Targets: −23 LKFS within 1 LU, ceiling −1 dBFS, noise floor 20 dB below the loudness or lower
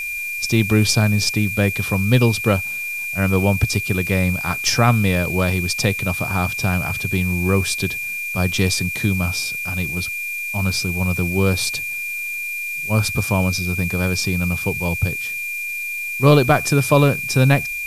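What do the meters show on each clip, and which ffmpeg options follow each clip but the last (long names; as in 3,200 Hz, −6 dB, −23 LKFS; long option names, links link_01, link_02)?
interfering tone 2,400 Hz; level of the tone −24 dBFS; background noise floor −27 dBFS; target noise floor −39 dBFS; integrated loudness −19.0 LKFS; sample peak −3.0 dBFS; target loudness −23.0 LKFS
→ -af "bandreject=frequency=2400:width=30"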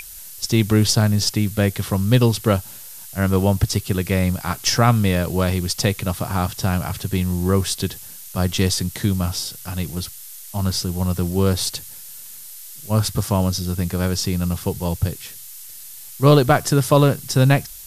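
interfering tone none found; background noise floor −38 dBFS; target noise floor −40 dBFS
→ -af "afftdn=noise_reduction=6:noise_floor=-38"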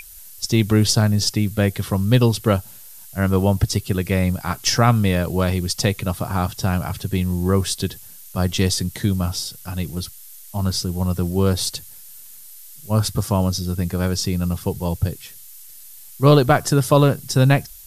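background noise floor −41 dBFS; integrated loudness −20.0 LKFS; sample peak −3.5 dBFS; target loudness −23.0 LKFS
→ -af "volume=-3dB"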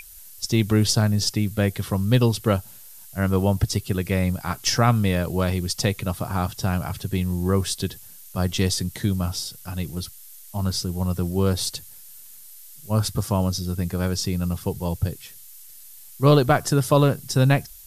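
integrated loudness −23.0 LKFS; sample peak −6.5 dBFS; background noise floor −44 dBFS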